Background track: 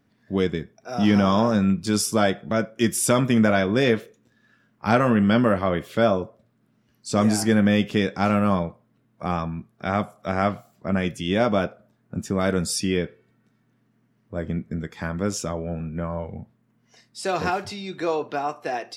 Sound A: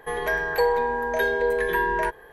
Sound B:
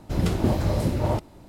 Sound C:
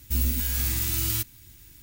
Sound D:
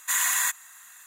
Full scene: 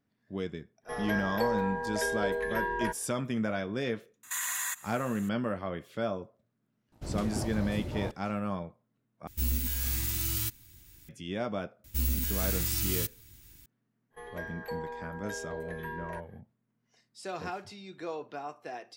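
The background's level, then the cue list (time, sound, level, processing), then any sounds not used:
background track -13 dB
0.82 s: add A -8.5 dB, fades 0.10 s
4.23 s: add D -3 dB + peak limiter -21 dBFS
6.92 s: add B -15.5 dB + waveshaping leveller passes 1
9.27 s: replace with C -5 dB
11.84 s: add C -4.5 dB
14.10 s: add A -17 dB, fades 0.05 s

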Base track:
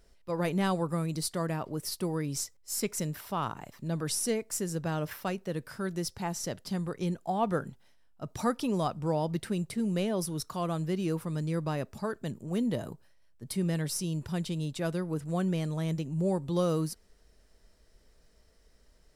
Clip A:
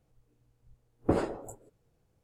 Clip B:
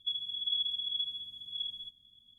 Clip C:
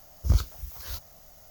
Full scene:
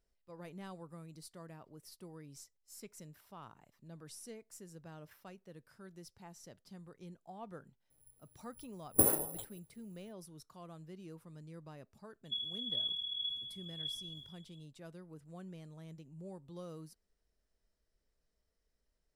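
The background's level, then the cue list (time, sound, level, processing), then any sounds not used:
base track -19.5 dB
7.90 s: add A -6.5 dB + careless resampling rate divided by 4×, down none, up zero stuff
12.25 s: add B -5 dB + decay stretcher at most 55 dB/s
not used: C

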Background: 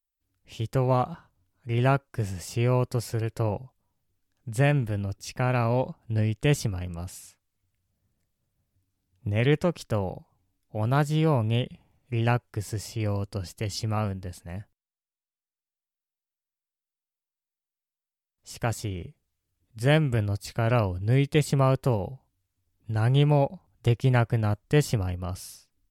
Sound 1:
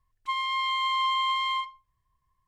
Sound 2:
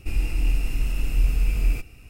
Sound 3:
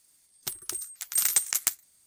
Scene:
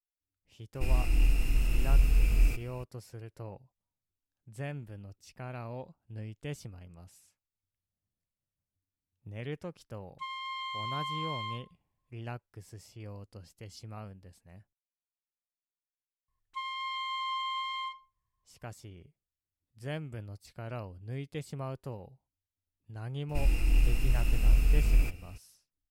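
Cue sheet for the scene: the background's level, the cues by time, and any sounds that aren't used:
background -16.5 dB
0.75 s: add 2 -3 dB
9.93 s: add 1 -10.5 dB
16.28 s: add 1 -8.5 dB
23.29 s: add 2 -3 dB
not used: 3

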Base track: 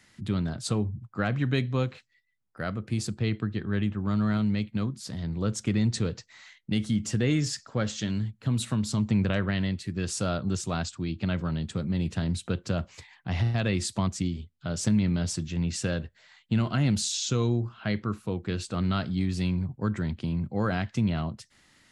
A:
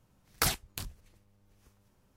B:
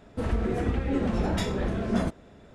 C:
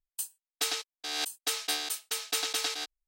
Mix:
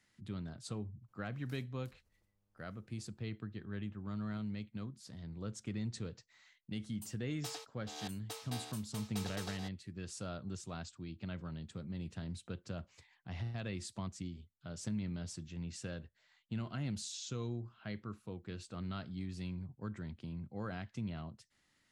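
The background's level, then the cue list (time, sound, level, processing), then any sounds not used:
base track -14.5 dB
1.08 s: add A -14.5 dB + compression 2.5:1, threshold -56 dBFS
6.83 s: add C -17 dB + high-order bell 540 Hz +10 dB 2.3 oct
not used: B

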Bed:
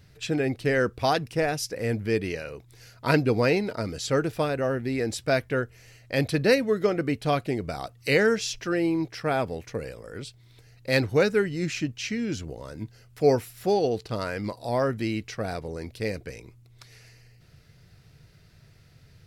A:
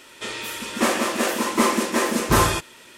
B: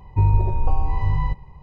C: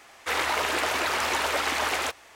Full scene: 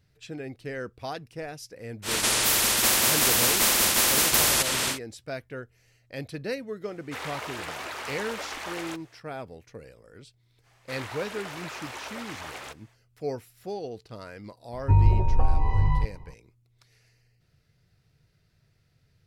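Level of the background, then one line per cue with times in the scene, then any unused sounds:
bed -11.5 dB
2.02 s: add A -1.5 dB, fades 0.10 s + spectrum-flattening compressor 10:1
6.85 s: add C -10 dB
10.62 s: add C -13 dB, fades 0.05 s
14.72 s: add B -1.5 dB

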